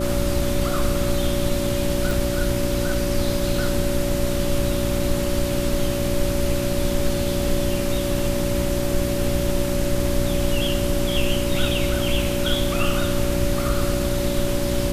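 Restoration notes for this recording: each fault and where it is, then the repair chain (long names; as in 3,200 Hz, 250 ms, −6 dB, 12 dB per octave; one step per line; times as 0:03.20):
mains hum 60 Hz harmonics 6 −26 dBFS
whistle 570 Hz −26 dBFS
0:02.11: click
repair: click removal
notch filter 570 Hz, Q 30
hum removal 60 Hz, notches 6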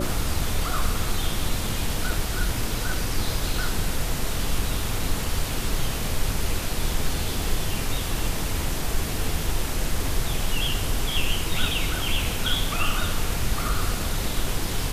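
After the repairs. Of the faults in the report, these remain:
none of them is left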